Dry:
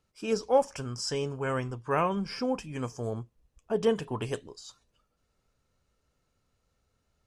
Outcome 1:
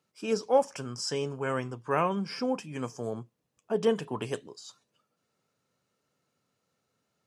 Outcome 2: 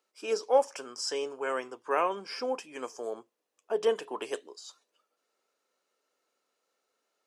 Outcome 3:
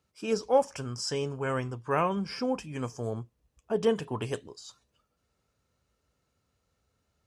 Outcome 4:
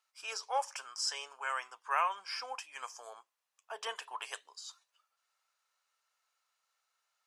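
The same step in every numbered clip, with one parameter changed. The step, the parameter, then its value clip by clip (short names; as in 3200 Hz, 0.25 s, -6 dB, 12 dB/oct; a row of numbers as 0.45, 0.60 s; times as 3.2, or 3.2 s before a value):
HPF, cutoff: 130, 340, 50, 860 Hz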